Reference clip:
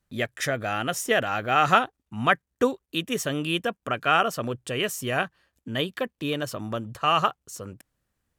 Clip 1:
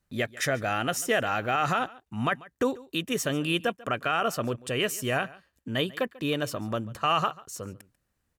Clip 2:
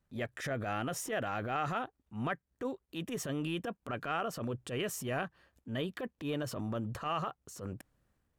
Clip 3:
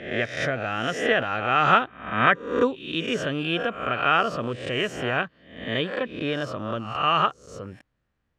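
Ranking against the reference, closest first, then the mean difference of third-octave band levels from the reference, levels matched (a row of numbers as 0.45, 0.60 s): 1, 2, 3; 3.0, 4.0, 7.0 dB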